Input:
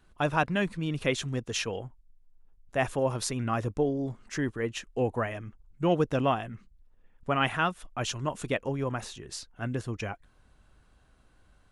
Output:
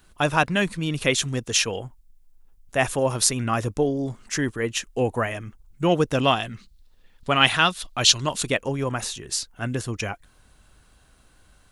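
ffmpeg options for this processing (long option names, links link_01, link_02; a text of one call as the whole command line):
ffmpeg -i in.wav -filter_complex "[0:a]asettb=1/sr,asplit=3[link_01][link_02][link_03];[link_01]atrim=end=6.214[link_04];[link_02]atrim=start=6.21:end=8.43,asetpts=PTS-STARTPTS,afade=type=in:duration=0.004:curve=qsin,afade=type=out:start_time=2.216:duration=0.004:curve=qsin,equalizer=frequency=4100:width=1.6:gain=13[link_05];[link_03]atrim=start=8.426[link_06];[link_04][link_05]acrossfade=duration=0.004:curve1=hsin:curve2=qsin[link_07];[link_07][link_06]acrossfade=duration=0.004:curve1=qsin:curve2=hsin,crystalizer=i=3.5:c=0,highshelf=frequency=5500:gain=-4.5,volume=4.5dB" out.wav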